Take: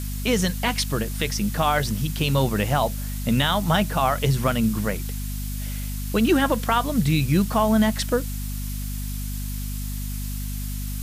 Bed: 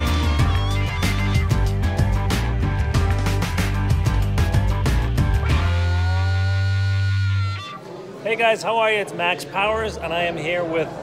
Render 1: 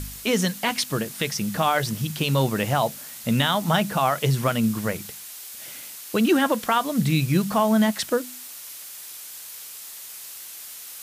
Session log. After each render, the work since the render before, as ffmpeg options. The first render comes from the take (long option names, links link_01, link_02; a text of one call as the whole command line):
ffmpeg -i in.wav -af "bandreject=frequency=50:width_type=h:width=4,bandreject=frequency=100:width_type=h:width=4,bandreject=frequency=150:width_type=h:width=4,bandreject=frequency=200:width_type=h:width=4,bandreject=frequency=250:width_type=h:width=4" out.wav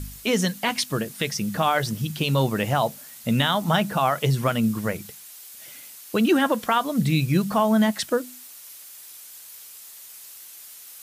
ffmpeg -i in.wav -af "afftdn=noise_reduction=6:noise_floor=-40" out.wav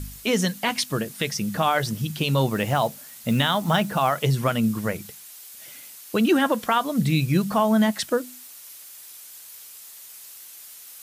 ffmpeg -i in.wav -filter_complex "[0:a]asettb=1/sr,asplit=3[link_01][link_02][link_03];[link_01]atrim=end=2.514[link_04];[link_02]atrim=start=2.51:end=4.24,asetpts=PTS-STARTPTS,afade=type=in:duration=0.004:curve=qsin,afade=type=out:start_time=1.726:duration=0.004:curve=qsin,acrusher=bits=7:mode=log:mix=0:aa=0.000001[link_05];[link_03]atrim=start=4.236[link_06];[link_04][link_05]acrossfade=duration=0.004:curve1=hsin:curve2=qsin[link_07];[link_07][link_06]acrossfade=duration=0.004:curve1=qsin:curve2=hsin" out.wav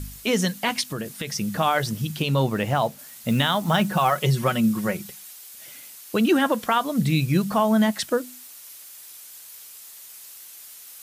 ffmpeg -i in.wav -filter_complex "[0:a]asettb=1/sr,asplit=3[link_01][link_02][link_03];[link_01]atrim=end=0.814[link_04];[link_02]atrim=start=0.81:end=1.34,asetpts=PTS-STARTPTS,afade=type=in:duration=0.004:curve=qsin,afade=type=out:start_time=0.526:duration=0.004:curve=qsin,acompressor=threshold=-25dB:ratio=6:attack=3.2:release=140:knee=1:detection=peak[link_05];[link_03]atrim=start=1.336[link_06];[link_04][link_05]acrossfade=duration=0.004:curve1=hsin:curve2=qsin[link_07];[link_07][link_06]acrossfade=duration=0.004:curve1=qsin:curve2=hsin,asettb=1/sr,asplit=3[link_08][link_09][link_10];[link_08]atrim=end=2.224[link_11];[link_09]atrim=start=2.22:end=2.99,asetpts=PTS-STARTPTS,afade=type=in:duration=0.004:curve=qsin,afade=type=out:start_time=0.766:duration=0.004:curve=qsin,highshelf=frequency=4400:gain=-5.5[link_12];[link_10]atrim=start=2.986[link_13];[link_11][link_12]acrossfade=duration=0.004:curve1=hsin:curve2=qsin[link_14];[link_14][link_13]acrossfade=duration=0.004:curve1=qsin:curve2=hsin,asettb=1/sr,asplit=3[link_15][link_16][link_17];[link_15]atrim=end=3.794[link_18];[link_16]atrim=start=3.79:end=5.33,asetpts=PTS-STARTPTS,afade=type=in:duration=0.004:curve=qsin,afade=type=out:start_time=1.536:duration=0.004:curve=qsin,aecho=1:1:5.4:0.59,atrim=end_sample=67914[link_19];[link_17]atrim=start=5.326[link_20];[link_18][link_19]acrossfade=duration=0.004:curve1=hsin:curve2=qsin[link_21];[link_21][link_20]acrossfade=duration=0.004:curve1=qsin:curve2=hsin" out.wav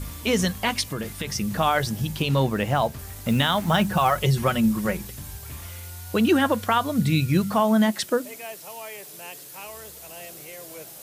ffmpeg -i in.wav -i bed.wav -filter_complex "[1:a]volume=-20.5dB[link_01];[0:a][link_01]amix=inputs=2:normalize=0" out.wav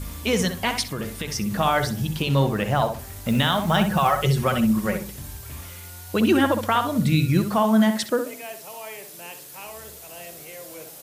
ffmpeg -i in.wav -filter_complex "[0:a]asplit=2[link_01][link_02];[link_02]adelay=64,lowpass=frequency=2000:poles=1,volume=-6.5dB,asplit=2[link_03][link_04];[link_04]adelay=64,lowpass=frequency=2000:poles=1,volume=0.28,asplit=2[link_05][link_06];[link_06]adelay=64,lowpass=frequency=2000:poles=1,volume=0.28,asplit=2[link_07][link_08];[link_08]adelay=64,lowpass=frequency=2000:poles=1,volume=0.28[link_09];[link_01][link_03][link_05][link_07][link_09]amix=inputs=5:normalize=0" out.wav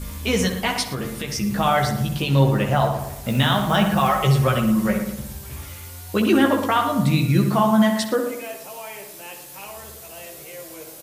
ffmpeg -i in.wav -filter_complex "[0:a]asplit=2[link_01][link_02];[link_02]adelay=15,volume=-5dB[link_03];[link_01][link_03]amix=inputs=2:normalize=0,asplit=2[link_04][link_05];[link_05]adelay=114,lowpass=frequency=1600:poles=1,volume=-7.5dB,asplit=2[link_06][link_07];[link_07]adelay=114,lowpass=frequency=1600:poles=1,volume=0.46,asplit=2[link_08][link_09];[link_09]adelay=114,lowpass=frequency=1600:poles=1,volume=0.46,asplit=2[link_10][link_11];[link_11]adelay=114,lowpass=frequency=1600:poles=1,volume=0.46,asplit=2[link_12][link_13];[link_13]adelay=114,lowpass=frequency=1600:poles=1,volume=0.46[link_14];[link_04][link_06][link_08][link_10][link_12][link_14]amix=inputs=6:normalize=0" out.wav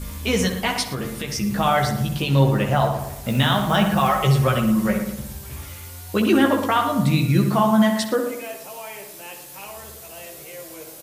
ffmpeg -i in.wav -af anull out.wav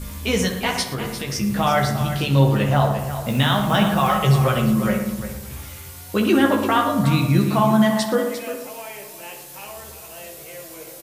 ffmpeg -i in.wav -filter_complex "[0:a]asplit=2[link_01][link_02];[link_02]adelay=29,volume=-13dB[link_03];[link_01][link_03]amix=inputs=2:normalize=0,aecho=1:1:350:0.282" out.wav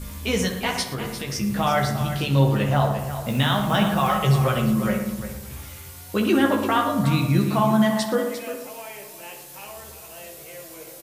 ffmpeg -i in.wav -af "volume=-2.5dB" out.wav